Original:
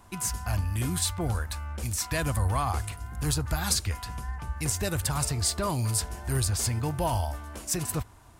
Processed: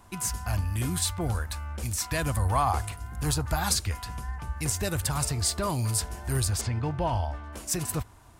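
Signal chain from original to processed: 2.47–3.69 dynamic EQ 820 Hz, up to +6 dB, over -42 dBFS, Q 1.2; 6.61–7.53 LPF 3400 Hz 12 dB/oct

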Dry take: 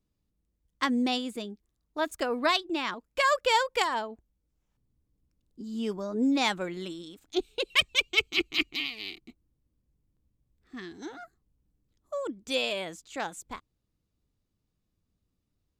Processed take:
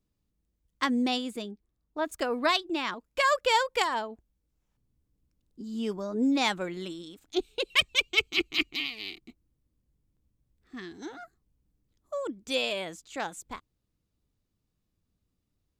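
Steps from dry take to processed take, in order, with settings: 1.51–2.09 high shelf 2600 Hz -11 dB

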